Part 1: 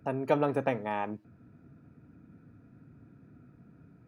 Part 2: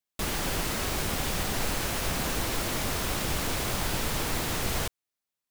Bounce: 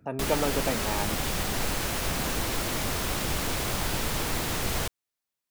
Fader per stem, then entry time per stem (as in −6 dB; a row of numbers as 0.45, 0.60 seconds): −1.0, +0.5 decibels; 0.00, 0.00 seconds